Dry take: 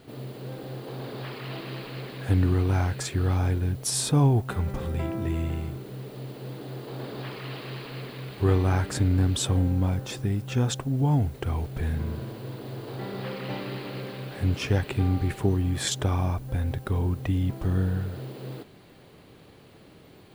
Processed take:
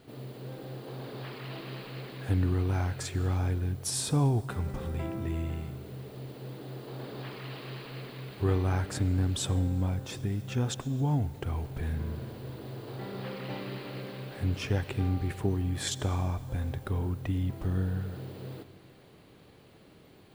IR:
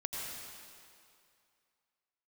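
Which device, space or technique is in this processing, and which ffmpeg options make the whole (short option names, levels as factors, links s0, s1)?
compressed reverb return: -filter_complex "[0:a]asplit=2[s0][s1];[1:a]atrim=start_sample=2205[s2];[s1][s2]afir=irnorm=-1:irlink=0,acompressor=threshold=0.0708:ratio=6,volume=0.237[s3];[s0][s3]amix=inputs=2:normalize=0,volume=0.501"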